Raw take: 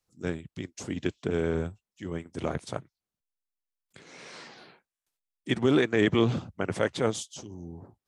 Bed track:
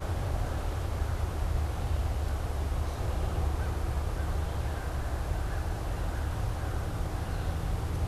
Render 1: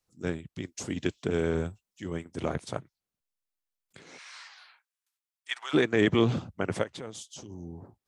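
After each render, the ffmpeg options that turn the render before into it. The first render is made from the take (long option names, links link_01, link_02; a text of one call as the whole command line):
ffmpeg -i in.wav -filter_complex "[0:a]asettb=1/sr,asplit=3[link_01][link_02][link_03];[link_01]atrim=end=0.654[link_04];[link_02]atrim=start=0.65:end=2.25,asetpts=PTS-STARTPTS,afade=type=in:duration=0.004:curve=qsin,afade=type=out:start_time=1.596:duration=0.004:curve=qsin,highshelf=frequency=3700:gain=4.5[link_05];[link_03]atrim=start=2.246[link_06];[link_04][link_05]acrossfade=duration=0.004:curve1=hsin:curve2=qsin[link_07];[link_07][link_06]acrossfade=duration=0.004:curve1=qsin:curve2=hsin,asplit=3[link_08][link_09][link_10];[link_08]afade=type=out:start_time=4.17:duration=0.02[link_11];[link_09]highpass=frequency=1000:width=0.5412,highpass=frequency=1000:width=1.3066,afade=type=in:start_time=4.17:duration=0.02,afade=type=out:start_time=5.73:duration=0.02[link_12];[link_10]afade=type=in:start_time=5.73:duration=0.02[link_13];[link_11][link_12][link_13]amix=inputs=3:normalize=0,asplit=3[link_14][link_15][link_16];[link_14]afade=type=out:start_time=6.82:duration=0.02[link_17];[link_15]acompressor=threshold=-40dB:ratio=3:attack=3.2:release=140:knee=1:detection=peak,afade=type=in:start_time=6.82:duration=0.02,afade=type=out:start_time=7.48:duration=0.02[link_18];[link_16]afade=type=in:start_time=7.48:duration=0.02[link_19];[link_17][link_18][link_19]amix=inputs=3:normalize=0" out.wav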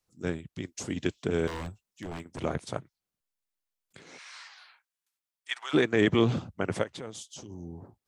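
ffmpeg -i in.wav -filter_complex "[0:a]asettb=1/sr,asplit=3[link_01][link_02][link_03];[link_01]atrim=end=1.474[link_04];[link_02]atrim=start=1.47:end=2.43,asetpts=PTS-STARTPTS,afade=type=in:duration=0.004:curve=qsin,afade=type=out:start_time=0.956:duration=0.004:curve=qsin,aeval=exprs='0.0299*(abs(mod(val(0)/0.0299+3,4)-2)-1)':channel_layout=same[link_05];[link_03]atrim=start=2.426[link_06];[link_04][link_05]acrossfade=duration=0.004:curve1=hsin:curve2=qsin[link_07];[link_07][link_06]acrossfade=duration=0.004:curve1=qsin:curve2=hsin" out.wav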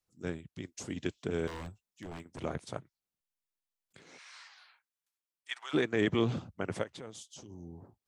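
ffmpeg -i in.wav -af "volume=-5.5dB" out.wav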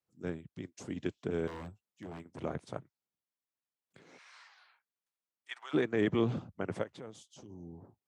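ffmpeg -i in.wav -af "highpass=91,highshelf=frequency=2300:gain=-9" out.wav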